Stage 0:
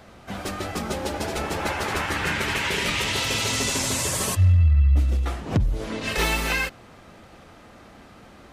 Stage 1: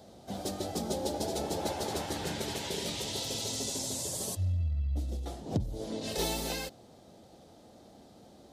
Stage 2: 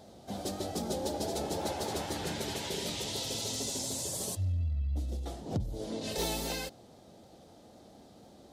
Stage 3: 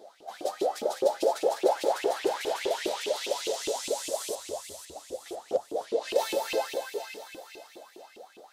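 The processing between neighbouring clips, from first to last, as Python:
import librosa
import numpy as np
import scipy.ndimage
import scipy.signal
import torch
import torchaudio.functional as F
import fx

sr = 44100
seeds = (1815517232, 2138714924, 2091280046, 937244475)

y1 = fx.highpass(x, sr, hz=140.0, slope=6)
y1 = fx.band_shelf(y1, sr, hz=1700.0, db=-14.5, octaves=1.7)
y1 = fx.rider(y1, sr, range_db=4, speed_s=2.0)
y1 = y1 * librosa.db_to_amplitude(-6.5)
y2 = 10.0 ** (-23.0 / 20.0) * np.tanh(y1 / 10.0 ** (-23.0 / 20.0))
y2 = fx.vibrato(y2, sr, rate_hz=3.9, depth_cents=30.0)
y3 = fx.echo_alternate(y2, sr, ms=250, hz=1600.0, feedback_pct=67, wet_db=-3.0)
y3 = fx.filter_lfo_highpass(y3, sr, shape='saw_up', hz=4.9, low_hz=320.0, high_hz=2900.0, q=7.3)
y3 = fx.dynamic_eq(y3, sr, hz=520.0, q=1.9, threshold_db=-40.0, ratio=4.0, max_db=6)
y3 = y3 * librosa.db_to_amplitude(-2.5)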